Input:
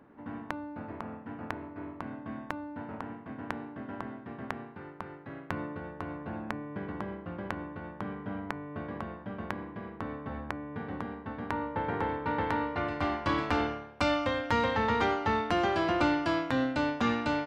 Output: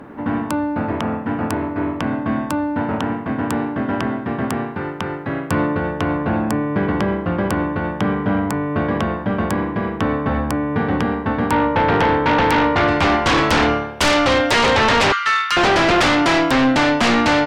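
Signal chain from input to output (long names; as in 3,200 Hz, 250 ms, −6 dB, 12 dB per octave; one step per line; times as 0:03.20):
0:15.12–0:15.57: elliptic high-pass filter 1,200 Hz, stop band 40 dB
sine wavefolder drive 16 dB, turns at −11.5 dBFS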